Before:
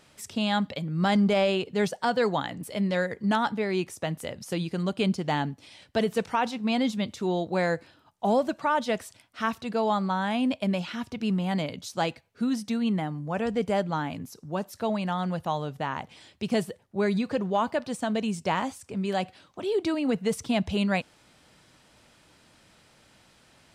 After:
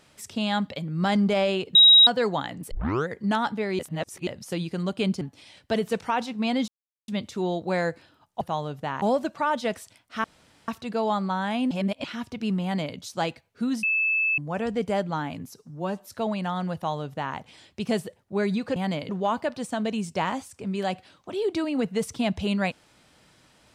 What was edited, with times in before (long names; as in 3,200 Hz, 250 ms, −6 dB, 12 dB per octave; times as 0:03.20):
0:01.75–0:02.07: beep over 3,820 Hz −10 dBFS
0:02.71: tape start 0.37 s
0:03.79–0:04.27: reverse
0:05.21–0:05.46: remove
0:06.93: splice in silence 0.40 s
0:09.48: splice in room tone 0.44 s
0:10.51–0:10.84: reverse
0:11.43–0:11.76: duplicate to 0:17.39
0:12.63–0:13.18: beep over 2,620 Hz −20.5 dBFS
0:14.36–0:14.70: time-stretch 1.5×
0:15.38–0:15.99: duplicate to 0:08.26